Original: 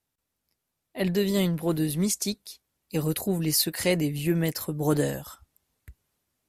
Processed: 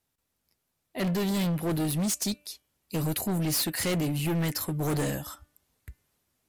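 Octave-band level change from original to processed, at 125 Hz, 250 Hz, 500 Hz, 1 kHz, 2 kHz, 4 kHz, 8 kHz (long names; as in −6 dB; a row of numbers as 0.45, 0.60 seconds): −1.0, −2.0, −5.5, +1.5, −1.5, −2.5, −1.5 decibels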